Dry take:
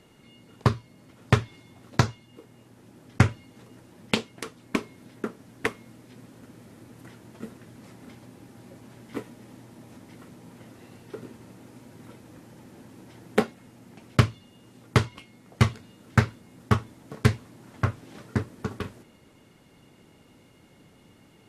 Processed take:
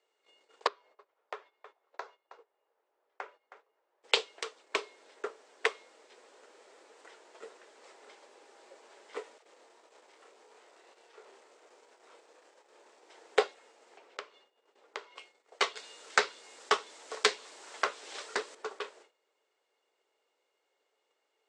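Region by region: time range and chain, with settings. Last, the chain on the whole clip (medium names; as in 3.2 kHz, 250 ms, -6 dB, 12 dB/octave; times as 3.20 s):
0.67–4.03 s: compression 1.5:1, threshold -47 dBFS + band-pass filter 840 Hz, Q 0.76 + delay 317 ms -11.5 dB
9.38–13.10 s: valve stage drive 47 dB, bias 0.55 + doubling 28 ms -4 dB + phase dispersion lows, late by 68 ms, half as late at 410 Hz
13.97–15.16 s: low-pass 2.7 kHz 6 dB/octave + compression 2.5:1, threshold -37 dBFS
15.76–18.55 s: tone controls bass +10 dB, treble +4 dB + tape noise reduction on one side only encoder only
whole clip: gate -51 dBFS, range -16 dB; Chebyshev band-pass 420–8100 Hz, order 4; dynamic bell 3.7 kHz, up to +5 dB, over -47 dBFS, Q 1.3; trim -1.5 dB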